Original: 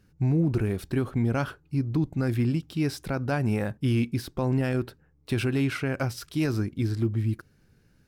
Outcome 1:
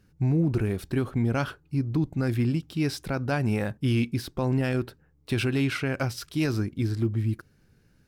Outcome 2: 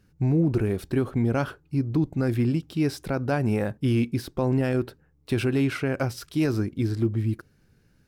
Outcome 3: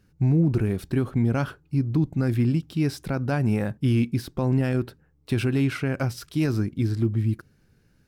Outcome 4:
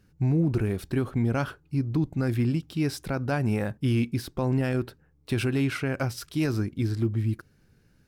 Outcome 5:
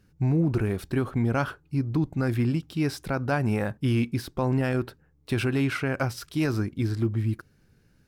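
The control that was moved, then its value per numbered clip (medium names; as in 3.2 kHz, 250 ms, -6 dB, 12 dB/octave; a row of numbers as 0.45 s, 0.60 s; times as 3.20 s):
dynamic bell, frequency: 3.7 kHz, 440 Hz, 170 Hz, 9.5 kHz, 1.1 kHz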